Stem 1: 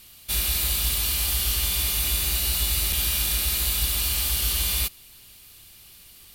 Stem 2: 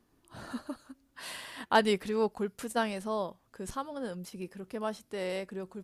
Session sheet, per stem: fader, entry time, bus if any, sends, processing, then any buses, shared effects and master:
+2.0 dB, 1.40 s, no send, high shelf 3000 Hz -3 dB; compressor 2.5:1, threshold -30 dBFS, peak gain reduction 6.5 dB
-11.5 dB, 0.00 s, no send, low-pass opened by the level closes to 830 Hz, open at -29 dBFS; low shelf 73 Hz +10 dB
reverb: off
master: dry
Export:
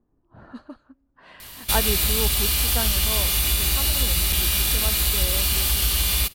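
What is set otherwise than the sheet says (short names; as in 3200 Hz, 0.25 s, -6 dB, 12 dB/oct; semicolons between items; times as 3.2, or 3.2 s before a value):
stem 1 +2.0 dB -> +10.0 dB; stem 2 -11.5 dB -> -1.5 dB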